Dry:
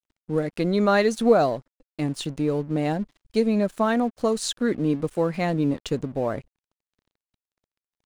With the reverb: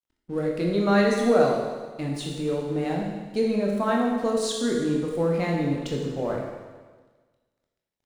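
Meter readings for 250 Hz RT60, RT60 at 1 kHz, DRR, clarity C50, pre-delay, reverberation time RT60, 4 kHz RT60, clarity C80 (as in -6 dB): 1.4 s, 1.4 s, -1.5 dB, 1.5 dB, 19 ms, 1.4 s, 1.4 s, 3.5 dB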